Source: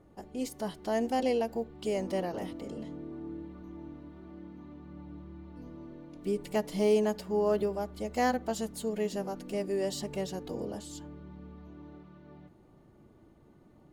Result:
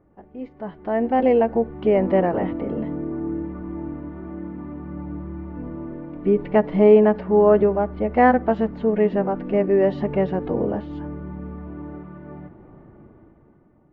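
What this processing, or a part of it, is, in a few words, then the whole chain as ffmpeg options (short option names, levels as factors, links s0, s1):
action camera in a waterproof case: -af "lowpass=f=2100:w=0.5412,lowpass=f=2100:w=1.3066,dynaudnorm=f=310:g=7:m=5.01" -ar 16000 -c:a aac -b:a 64k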